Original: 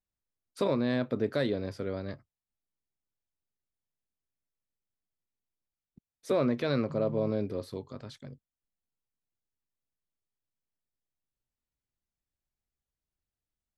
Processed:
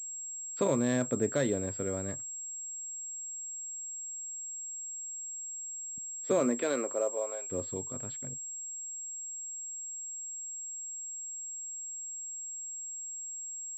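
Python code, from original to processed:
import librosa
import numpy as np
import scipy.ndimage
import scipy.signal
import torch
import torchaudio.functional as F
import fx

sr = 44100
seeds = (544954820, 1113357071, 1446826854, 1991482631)

y = fx.highpass(x, sr, hz=fx.line((6.39, 180.0), (7.51, 770.0)), slope=24, at=(6.39, 7.51), fade=0.02)
y = fx.pwm(y, sr, carrier_hz=7600.0)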